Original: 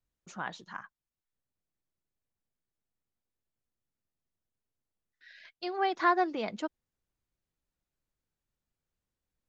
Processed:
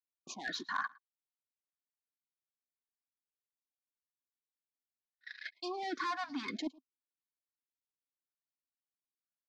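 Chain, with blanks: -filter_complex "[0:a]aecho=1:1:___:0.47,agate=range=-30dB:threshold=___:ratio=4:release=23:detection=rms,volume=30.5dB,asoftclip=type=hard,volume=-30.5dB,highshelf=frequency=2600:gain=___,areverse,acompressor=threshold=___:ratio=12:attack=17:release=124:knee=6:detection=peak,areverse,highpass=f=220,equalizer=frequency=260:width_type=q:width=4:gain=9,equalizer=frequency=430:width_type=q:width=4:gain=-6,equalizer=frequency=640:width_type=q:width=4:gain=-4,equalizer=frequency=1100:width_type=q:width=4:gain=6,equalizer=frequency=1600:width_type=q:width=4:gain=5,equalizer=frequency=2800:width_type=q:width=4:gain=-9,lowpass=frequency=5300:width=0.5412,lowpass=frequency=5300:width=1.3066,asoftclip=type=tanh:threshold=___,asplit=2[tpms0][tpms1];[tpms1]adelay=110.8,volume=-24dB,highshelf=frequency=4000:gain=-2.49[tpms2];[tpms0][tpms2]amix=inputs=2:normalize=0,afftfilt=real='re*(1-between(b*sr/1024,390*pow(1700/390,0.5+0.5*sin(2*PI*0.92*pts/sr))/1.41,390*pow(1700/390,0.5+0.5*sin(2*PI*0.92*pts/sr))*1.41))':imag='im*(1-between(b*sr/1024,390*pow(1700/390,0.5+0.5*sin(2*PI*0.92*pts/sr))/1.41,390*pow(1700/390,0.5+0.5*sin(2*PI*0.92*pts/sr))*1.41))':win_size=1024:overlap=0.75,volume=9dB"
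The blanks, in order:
2.8, -52dB, 9.5, -45dB, -33.5dB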